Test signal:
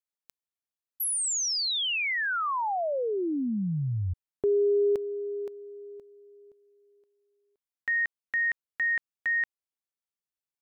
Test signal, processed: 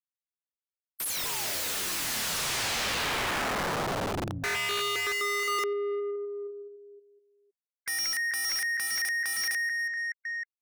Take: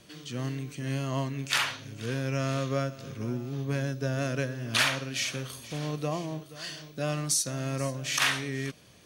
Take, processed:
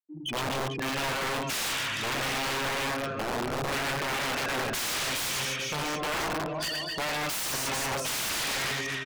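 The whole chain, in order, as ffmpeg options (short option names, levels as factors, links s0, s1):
-filter_complex "[0:a]bandreject=f=4300:w=18,afftfilt=real='re*gte(hypot(re,im),0.0251)':imag='im*gte(hypot(re,im),0.0251)':win_size=1024:overlap=0.75,tiltshelf=f=970:g=-3,acompressor=threshold=0.0316:ratio=2.5:attack=0.46:release=211:knee=1:detection=peak,aecho=1:1:110|253|438.9|680.6|994.7:0.631|0.398|0.251|0.158|0.1,aeval=exprs='(mod(37.6*val(0)+1,2)-1)/37.6':c=same,asplit=2[s0][s1];[s1]highpass=f=720:p=1,volume=8.91,asoftclip=type=tanh:threshold=0.0266[s2];[s0][s2]amix=inputs=2:normalize=0,lowpass=f=7700:p=1,volume=0.501,volume=1.88"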